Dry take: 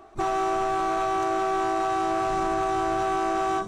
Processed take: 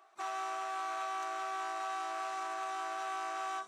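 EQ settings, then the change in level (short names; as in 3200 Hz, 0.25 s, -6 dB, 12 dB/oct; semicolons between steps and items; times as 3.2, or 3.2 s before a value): HPF 990 Hz 12 dB/oct; -7.5 dB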